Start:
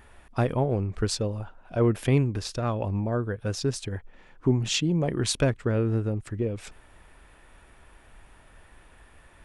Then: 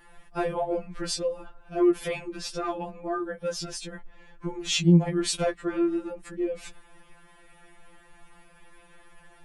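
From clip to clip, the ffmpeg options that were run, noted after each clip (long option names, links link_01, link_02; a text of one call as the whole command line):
ffmpeg -i in.wav -af "afftfilt=real='re*2.83*eq(mod(b,8),0)':imag='im*2.83*eq(mod(b,8),0)':win_size=2048:overlap=0.75,volume=2.5dB" out.wav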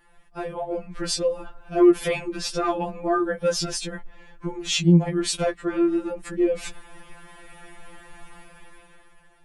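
ffmpeg -i in.wav -af "dynaudnorm=framelen=170:gausssize=11:maxgain=14dB,volume=-5dB" out.wav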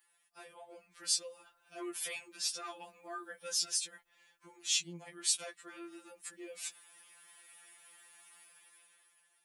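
ffmpeg -i in.wav -af "aderivative,volume=-2dB" out.wav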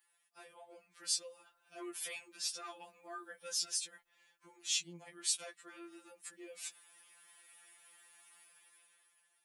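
ffmpeg -i in.wav -af "lowshelf=frequency=170:gain=-4.5,volume=-3dB" out.wav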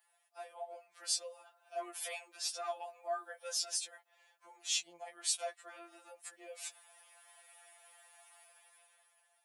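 ffmpeg -i in.wav -af "highpass=frequency=660:width_type=q:width=5.4" out.wav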